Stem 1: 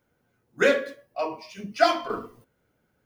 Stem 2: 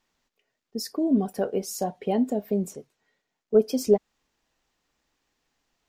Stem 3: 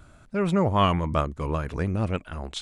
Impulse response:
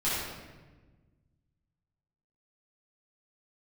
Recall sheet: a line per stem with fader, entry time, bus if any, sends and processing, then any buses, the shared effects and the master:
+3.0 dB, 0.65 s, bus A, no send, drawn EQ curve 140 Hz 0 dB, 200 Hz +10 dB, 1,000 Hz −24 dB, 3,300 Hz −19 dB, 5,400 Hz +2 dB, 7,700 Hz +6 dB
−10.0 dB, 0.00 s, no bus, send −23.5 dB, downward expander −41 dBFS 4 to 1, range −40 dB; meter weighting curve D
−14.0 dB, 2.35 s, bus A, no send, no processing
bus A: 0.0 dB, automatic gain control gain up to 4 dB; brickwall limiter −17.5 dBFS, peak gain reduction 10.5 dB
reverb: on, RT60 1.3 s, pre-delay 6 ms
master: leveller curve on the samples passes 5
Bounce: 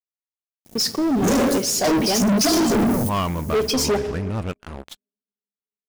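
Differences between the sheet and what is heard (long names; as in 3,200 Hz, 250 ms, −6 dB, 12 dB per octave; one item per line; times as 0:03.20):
stem 1 +3.0 dB → +11.5 dB
stem 3 −14.0 dB → −21.5 dB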